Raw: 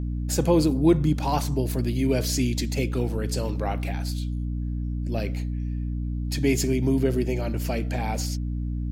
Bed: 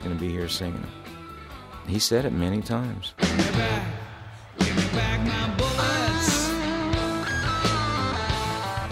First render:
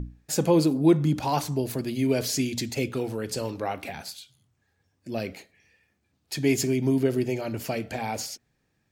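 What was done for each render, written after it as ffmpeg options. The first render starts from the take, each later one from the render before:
-af "bandreject=f=60:t=h:w=6,bandreject=f=120:t=h:w=6,bandreject=f=180:t=h:w=6,bandreject=f=240:t=h:w=6,bandreject=f=300:t=h:w=6"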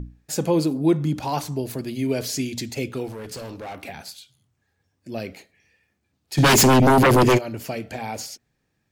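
-filter_complex "[0:a]asettb=1/sr,asplit=3[a][b][c];[a]atrim=end=3.084[d];[b]atrim=start=3.08:end=3.81,asetpts=PTS-STARTPTS,afade=t=in:d=0.004:c=qsin,afade=t=out:st=0.726:d=0.004:c=qsin,asoftclip=type=hard:threshold=-31.5dB[e];[c]atrim=start=3.806[f];[d][e]acrossfade=d=0.004:c1=hsin:c2=qsin[g];[g][f]acrossfade=d=0.004:c1=qsin:c2=hsin,asplit=3[h][i][j];[h]afade=t=out:st=6.37:d=0.02[k];[i]aeval=exprs='0.282*sin(PI/2*5.01*val(0)/0.282)':c=same,afade=t=in:st=6.37:d=0.02,afade=t=out:st=7.37:d=0.02[l];[j]afade=t=in:st=7.37:d=0.02[m];[k][l][m]amix=inputs=3:normalize=0"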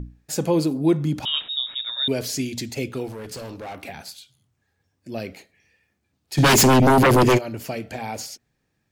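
-filter_complex "[0:a]asettb=1/sr,asplit=3[a][b][c];[a]atrim=end=1.254[d];[b]atrim=start=1.25:end=2.08,asetpts=PTS-STARTPTS,afade=t=in:d=0.004:c=qsin,afade=t=out:st=0.826:d=0.004:c=qsin,lowpass=f=3.3k:t=q:w=0.5098,lowpass=f=3.3k:t=q:w=0.6013,lowpass=f=3.3k:t=q:w=0.9,lowpass=f=3.3k:t=q:w=2.563,afreqshift=-3900[e];[c]atrim=start=2.076[f];[d][e]acrossfade=d=0.004:c1=hsin:c2=qsin[g];[g][f]acrossfade=d=0.004:c1=qsin:c2=hsin"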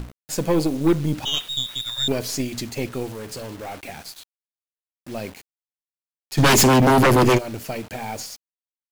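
-af "acrusher=bits=6:mix=0:aa=0.000001,aeval=exprs='0.398*(cos(1*acos(clip(val(0)/0.398,-1,1)))-cos(1*PI/2))+0.0398*(cos(6*acos(clip(val(0)/0.398,-1,1)))-cos(6*PI/2))':c=same"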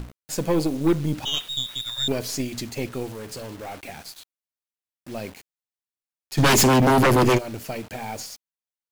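-af "volume=-2dB"

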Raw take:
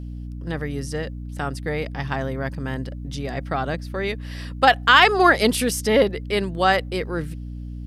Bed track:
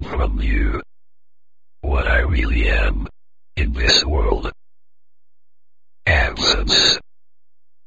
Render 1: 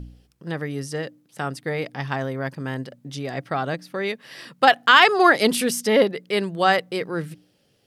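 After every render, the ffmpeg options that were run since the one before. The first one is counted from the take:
-af "bandreject=f=60:t=h:w=4,bandreject=f=120:t=h:w=4,bandreject=f=180:t=h:w=4,bandreject=f=240:t=h:w=4,bandreject=f=300:t=h:w=4"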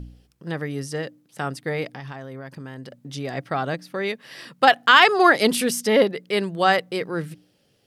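-filter_complex "[0:a]asettb=1/sr,asplit=3[a][b][c];[a]atrim=end=1.934[d];[b]atrim=start=1.93:end=3.11,asetpts=PTS-STARTPTS,afade=t=in:d=0.004:c=qsin,afade=t=out:st=1.176:d=0.004:c=qsin,acompressor=threshold=-32dB:ratio=6:attack=3.2:release=140:knee=1:detection=peak[e];[c]atrim=start=3.106[f];[d][e]acrossfade=d=0.004:c1=hsin:c2=qsin[g];[g][f]acrossfade=d=0.004:c1=qsin:c2=hsin"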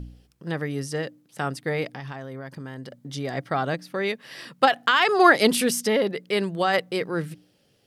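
-filter_complex "[0:a]asettb=1/sr,asplit=3[a][b][c];[a]atrim=end=2.304[d];[b]atrim=start=2.3:end=3.63,asetpts=PTS-STARTPTS,afade=t=in:d=0.004:c=qsin,afade=t=out:st=1.326:d=0.004:c=qsin,bandreject=f=2.6k:w=12[e];[c]atrim=start=3.626[f];[d][e]acrossfade=d=0.004:c1=hsin:c2=qsin[g];[g][f]acrossfade=d=0.004:c1=qsin:c2=hsin,asettb=1/sr,asplit=3[h][i][j];[h]atrim=end=4.654[k];[i]atrim=start=4.65:end=5.09,asetpts=PTS-STARTPTS,afade=t=in:d=0.004:c=qsin,afade=t=out:st=0.436:d=0.004:c=qsin,acompressor=threshold=-14dB:ratio=6:attack=3.2:release=140:knee=1:detection=peak[l];[j]atrim=start=5.086[m];[k][l]acrossfade=d=0.004:c1=hsin:c2=qsin[n];[n][m]acrossfade=d=0.004:c1=qsin:c2=hsin,asplit=3[o][p][q];[o]afade=t=out:st=5.79:d=0.02[r];[p]acompressor=threshold=-17dB:ratio=6:attack=3.2:release=140:knee=1:detection=peak,afade=t=in:st=5.79:d=0.02,afade=t=out:st=6.73:d=0.02[s];[q]afade=t=in:st=6.73:d=0.02[t];[r][s][t]amix=inputs=3:normalize=0"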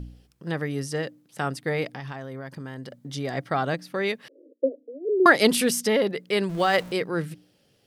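-filter_complex "[0:a]asettb=1/sr,asplit=3[a][b][c];[a]atrim=end=4.284[d];[b]atrim=start=4.28:end=5.26,asetpts=PTS-STARTPTS,afade=t=in:d=0.004:c=qsin,afade=t=out:st=0.976:d=0.004:c=qsin,asuperpass=centerf=390:order=20:qfactor=1.2[e];[c]atrim=start=5.256[f];[d][e]acrossfade=d=0.004:c1=hsin:c2=qsin[g];[g][f]acrossfade=d=0.004:c1=qsin:c2=hsin,asettb=1/sr,asplit=3[h][i][j];[h]atrim=end=6.494[k];[i]atrim=start=6.49:end=6.92,asetpts=PTS-STARTPTS,afade=t=in:d=0.004:c=qsin,afade=t=out:st=0.426:d=0.004:c=qsin,aeval=exprs='val(0)+0.5*0.0158*sgn(val(0))':c=same[l];[j]atrim=start=6.916[m];[k][l]acrossfade=d=0.004:c1=hsin:c2=qsin[n];[n][m]acrossfade=d=0.004:c1=qsin:c2=hsin"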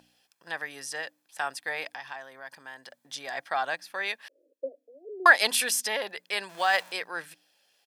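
-af "highpass=840,aecho=1:1:1.2:0.38"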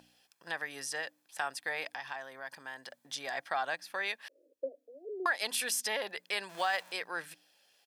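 -af "alimiter=limit=-14dB:level=0:latency=1:release=428,acompressor=threshold=-37dB:ratio=1.5"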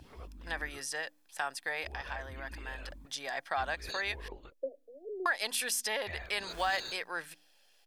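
-filter_complex "[1:a]volume=-28.5dB[a];[0:a][a]amix=inputs=2:normalize=0"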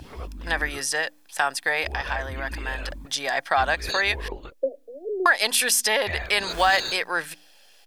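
-af "volume=12dB"

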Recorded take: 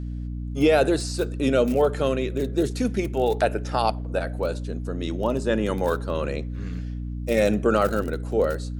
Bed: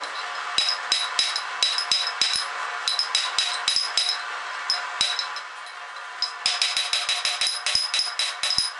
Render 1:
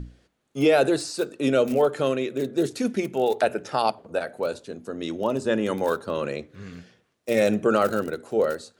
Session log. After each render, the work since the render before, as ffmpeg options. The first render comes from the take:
-af "bandreject=f=60:t=h:w=6,bandreject=f=120:t=h:w=6,bandreject=f=180:t=h:w=6,bandreject=f=240:t=h:w=6,bandreject=f=300:t=h:w=6"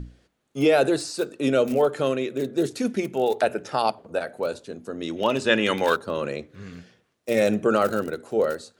-filter_complex "[0:a]asplit=3[a][b][c];[a]afade=t=out:st=5.16:d=0.02[d];[b]equalizer=f=2.7k:t=o:w=2:g=14,afade=t=in:st=5.16:d=0.02,afade=t=out:st=5.95:d=0.02[e];[c]afade=t=in:st=5.95:d=0.02[f];[d][e][f]amix=inputs=3:normalize=0"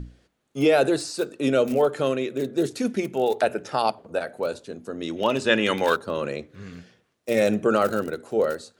-af anull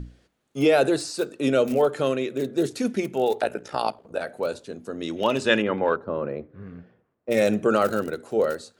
-filter_complex "[0:a]asettb=1/sr,asplit=3[a][b][c];[a]atrim=end=3.404[d];[b]atrim=start=3.4:end=4.2,asetpts=PTS-STARTPTS,afade=t=in:d=0.004:c=qsin,afade=t=out:st=0.796:d=0.004:c=qsin,tremolo=f=58:d=0.71[e];[c]atrim=start=4.196[f];[d][e]acrossfade=d=0.004:c1=hsin:c2=qsin[g];[g][f]acrossfade=d=0.004:c1=qsin:c2=hsin,asplit=3[h][i][j];[h]afade=t=out:st=5.61:d=0.02[k];[i]lowpass=1.2k,afade=t=in:st=5.61:d=0.02,afade=t=out:st=7.3:d=0.02[l];[j]afade=t=in:st=7.3:d=0.02[m];[k][l][m]amix=inputs=3:normalize=0"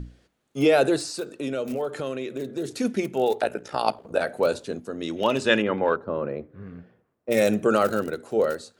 -filter_complex "[0:a]asplit=3[a][b][c];[a]afade=t=out:st=1.17:d=0.02[d];[b]acompressor=threshold=-28dB:ratio=2.5:attack=3.2:release=140:knee=1:detection=peak,afade=t=in:st=1.17:d=0.02,afade=t=out:st=2.67:d=0.02[e];[c]afade=t=in:st=2.67:d=0.02[f];[d][e][f]amix=inputs=3:normalize=0,asettb=1/sr,asplit=3[g][h][i];[g]atrim=end=3.874[j];[h]atrim=start=3.87:end=4.8,asetpts=PTS-STARTPTS,afade=t=in:d=0.004:c=qsin,afade=t=out:st=0.926:d=0.004:c=qsin,acontrast=25[k];[i]atrim=start=4.796[l];[j][k]acrossfade=d=0.004:c1=hsin:c2=qsin[m];[m][l]acrossfade=d=0.004:c1=qsin:c2=hsin,asettb=1/sr,asplit=3[n][o][p];[n]atrim=end=7.324[q];[o]atrim=start=7.32:end=7.82,asetpts=PTS-STARTPTS,afade=t=in:d=0.004:c=qsin,afade=t=out:st=0.496:d=0.004:c=qsin,highshelf=f=10k:g=9.5[r];[p]atrim=start=7.816[s];[q][r]acrossfade=d=0.004:c1=hsin:c2=qsin[t];[t][s]acrossfade=d=0.004:c1=qsin:c2=hsin"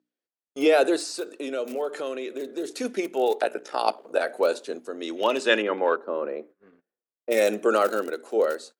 -af "highpass=f=290:w=0.5412,highpass=f=290:w=1.3066,agate=range=-29dB:threshold=-45dB:ratio=16:detection=peak"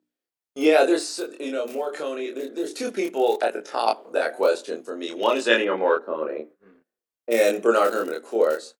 -filter_complex "[0:a]asplit=2[a][b];[b]adelay=26,volume=-2dB[c];[a][c]amix=inputs=2:normalize=0"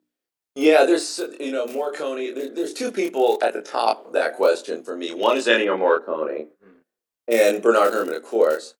-af "volume=2.5dB,alimiter=limit=-3dB:level=0:latency=1"

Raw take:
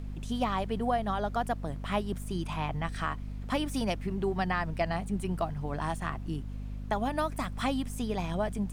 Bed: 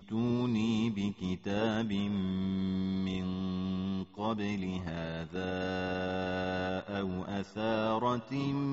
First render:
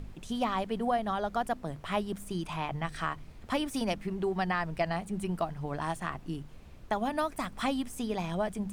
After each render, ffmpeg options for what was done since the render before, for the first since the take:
-af "bandreject=f=50:t=h:w=4,bandreject=f=100:t=h:w=4,bandreject=f=150:t=h:w=4,bandreject=f=200:t=h:w=4,bandreject=f=250:t=h:w=4"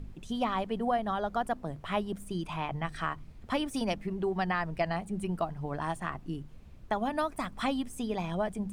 -af "afftdn=nr=6:nf=-49"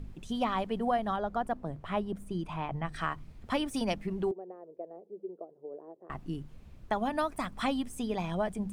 -filter_complex "[0:a]asettb=1/sr,asplit=3[a][b][c];[a]atrim=end=1.164[d];[b]atrim=start=1.16:end=2.94,asetpts=PTS-STARTPTS,afade=t=in:d=0.004:c=qsin,afade=t=out:st=1.776:d=0.004:c=qsin,highshelf=f=2k:g=-8.5[e];[c]atrim=start=2.936[f];[d][e]acrossfade=d=0.004:c1=hsin:c2=qsin[g];[g][f]acrossfade=d=0.004:c1=qsin:c2=hsin,asettb=1/sr,asplit=3[h][i][j];[h]atrim=end=4.314[k];[i]atrim=start=4.31:end=6.1,asetpts=PTS-STARTPTS,afade=t=in:d=0.004:c=qsin,afade=t=out:st=1.786:d=0.004:c=qsin,asuperpass=centerf=440:order=4:qfactor=2.5[l];[j]atrim=start=6.096[m];[k][l]acrossfade=d=0.004:c1=hsin:c2=qsin[n];[n][m]acrossfade=d=0.004:c1=qsin:c2=hsin"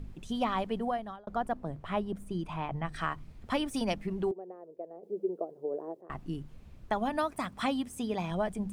-filter_complex "[0:a]asettb=1/sr,asplit=3[a][b][c];[a]atrim=end=7.194[d];[b]atrim=start=7.19:end=8.31,asetpts=PTS-STARTPTS,afade=t=in:d=0.004:c=qsin,afade=t=out:st=1.116:d=0.004:c=qsin,highpass=62[e];[c]atrim=start=8.306[f];[d][e]acrossfade=d=0.004:c1=hsin:c2=qsin[g];[g][f]acrossfade=d=0.004:c1=qsin:c2=hsin,asplit=4[h][i][j][k];[h]atrim=end=1.27,asetpts=PTS-STARTPTS,afade=t=out:st=0.74:d=0.53[l];[i]atrim=start=1.27:end=5.032,asetpts=PTS-STARTPTS,afade=t=in:d=0.004:c=hsin[m];[j]atrim=start=5.028:end=6.012,asetpts=PTS-STARTPTS,volume=8.5dB[n];[k]atrim=start=6.008[o];[l][m]concat=n=2:v=0:a=1[p];[p][n]acrossfade=d=0.004:c1=hsin:c2=hsin[q];[q][o]acrossfade=d=0.004:c1=hsin:c2=hsin"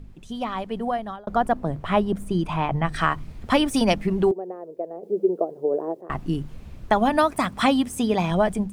-af "dynaudnorm=f=660:g=3:m=11.5dB"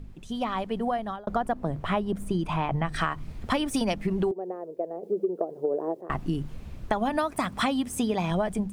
-af "acompressor=threshold=-23dB:ratio=6"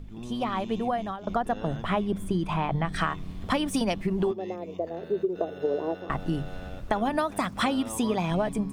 -filter_complex "[1:a]volume=-9dB[a];[0:a][a]amix=inputs=2:normalize=0"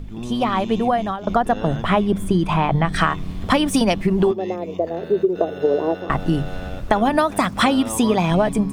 -af "volume=9dB"

